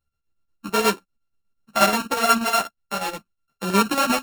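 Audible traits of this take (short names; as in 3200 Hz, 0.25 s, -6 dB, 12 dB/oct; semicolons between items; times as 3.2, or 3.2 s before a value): a buzz of ramps at a fixed pitch in blocks of 32 samples; chopped level 8.3 Hz, depth 60%, duty 65%; a shimmering, thickened sound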